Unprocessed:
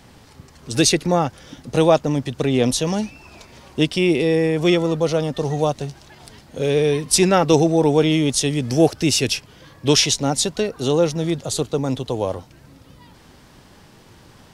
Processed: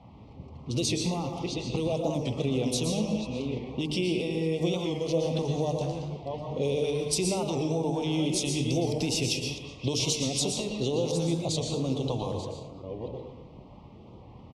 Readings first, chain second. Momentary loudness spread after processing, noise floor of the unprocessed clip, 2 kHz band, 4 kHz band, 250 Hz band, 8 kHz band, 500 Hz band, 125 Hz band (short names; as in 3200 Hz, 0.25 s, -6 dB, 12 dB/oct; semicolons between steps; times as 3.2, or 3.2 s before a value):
10 LU, -48 dBFS, -12.0 dB, -9.0 dB, -9.0 dB, -9.5 dB, -10.5 dB, -7.0 dB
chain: reverse delay 0.599 s, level -13.5 dB; low-pass opened by the level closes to 1500 Hz, open at -16 dBFS; HPF 50 Hz; high shelf 8400 Hz -6 dB; notches 50/100/150/200/250/300/350/400/450 Hz; limiter -11 dBFS, peak gain reduction 9 dB; compressor 6:1, threshold -25 dBFS, peak gain reduction 9.5 dB; LFO notch saw up 1.9 Hz 330–2000 Hz; Butterworth band-stop 1600 Hz, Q 1.2; speakerphone echo 0.22 s, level -11 dB; plate-style reverb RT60 0.64 s, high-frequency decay 0.65×, pre-delay 0.105 s, DRR 3 dB; record warp 45 rpm, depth 100 cents